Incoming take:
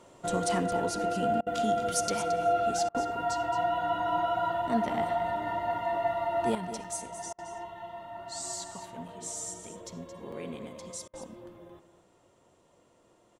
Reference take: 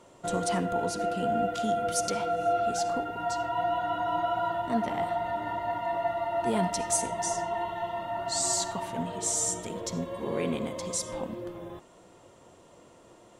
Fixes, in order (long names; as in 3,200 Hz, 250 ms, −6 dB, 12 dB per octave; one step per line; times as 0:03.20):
repair the gap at 0:06.84/0:09.08/0:10.32, 4.5 ms
repair the gap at 0:01.41/0:02.89/0:07.33/0:11.08, 54 ms
echo removal 222 ms −11.5 dB
level correction +9.5 dB, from 0:06.55